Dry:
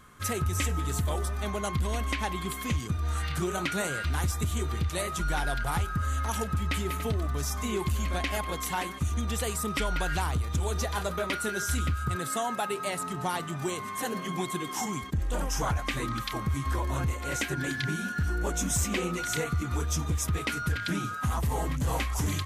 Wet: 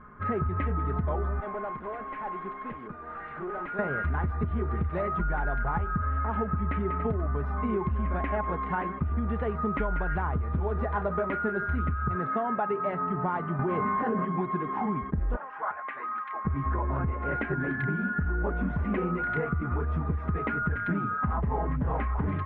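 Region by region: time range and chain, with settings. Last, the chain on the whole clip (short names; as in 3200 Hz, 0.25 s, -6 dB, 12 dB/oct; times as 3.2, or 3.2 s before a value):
1.4–3.79 HPF 340 Hz + tube stage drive 36 dB, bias 0.5
13.59–14.25 LPF 3200 Hz 6 dB/oct + doubler 24 ms -11.5 dB + fast leveller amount 100%
15.36–16.45 HPF 1000 Hz + air absorption 230 m
whole clip: inverse Chebyshev low-pass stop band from 6900 Hz, stop band 70 dB; comb 4.8 ms, depth 34%; compressor, threshold -29 dBFS; gain +4.5 dB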